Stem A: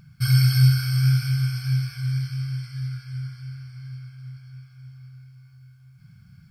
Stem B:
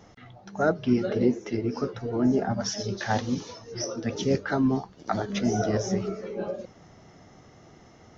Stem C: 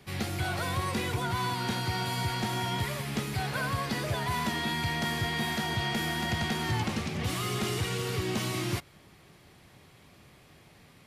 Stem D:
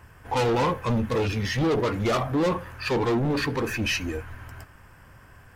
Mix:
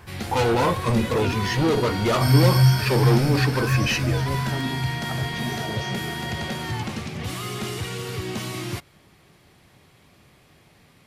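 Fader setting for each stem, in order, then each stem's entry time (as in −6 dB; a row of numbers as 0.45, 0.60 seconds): 0.0, −8.0, +1.0, +2.0 decibels; 2.00, 0.00, 0.00, 0.00 seconds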